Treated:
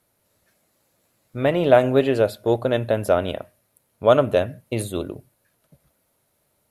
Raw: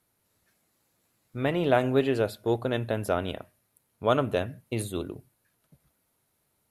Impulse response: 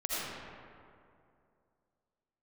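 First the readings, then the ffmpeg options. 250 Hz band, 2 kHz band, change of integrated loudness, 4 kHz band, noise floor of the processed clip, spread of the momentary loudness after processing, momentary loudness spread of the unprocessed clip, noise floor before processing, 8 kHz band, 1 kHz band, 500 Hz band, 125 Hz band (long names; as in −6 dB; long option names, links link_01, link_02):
+5.0 dB, +4.5 dB, +7.0 dB, +4.5 dB, −69 dBFS, 14 LU, 13 LU, −74 dBFS, +4.5 dB, +6.0 dB, +8.5 dB, +4.5 dB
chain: -af "equalizer=frequency=580:width_type=o:width=0.41:gain=7,volume=4.5dB"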